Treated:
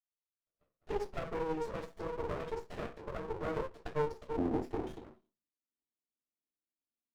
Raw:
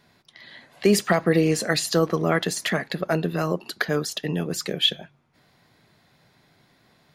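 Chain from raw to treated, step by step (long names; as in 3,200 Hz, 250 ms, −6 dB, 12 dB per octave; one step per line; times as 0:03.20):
adaptive Wiener filter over 25 samples
Chebyshev high-pass filter 460 Hz, order 4, from 0:04.31 240 Hz
noise gate −58 dBFS, range −30 dB
high-shelf EQ 5,900 Hz +8.5 dB
downward compressor, threshold −28 dBFS, peak gain reduction 13.5 dB
leveller curve on the samples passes 2
rotating-speaker cabinet horn 6.7 Hz, later 0.8 Hz, at 0:02.01
convolution reverb RT60 0.25 s, pre-delay 46 ms
windowed peak hold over 33 samples
level −7.5 dB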